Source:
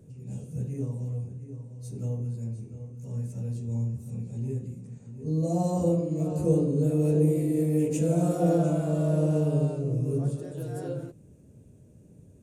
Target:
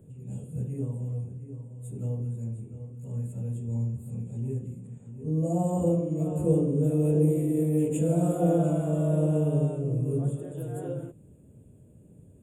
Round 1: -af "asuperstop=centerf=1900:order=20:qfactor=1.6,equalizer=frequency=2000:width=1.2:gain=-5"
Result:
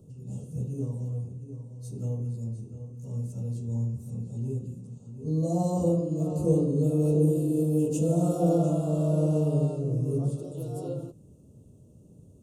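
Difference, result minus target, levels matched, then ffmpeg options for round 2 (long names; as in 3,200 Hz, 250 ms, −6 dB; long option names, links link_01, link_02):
2,000 Hz band −7.5 dB
-af "asuperstop=centerf=5000:order=20:qfactor=1.6,equalizer=frequency=2000:width=1.2:gain=-5"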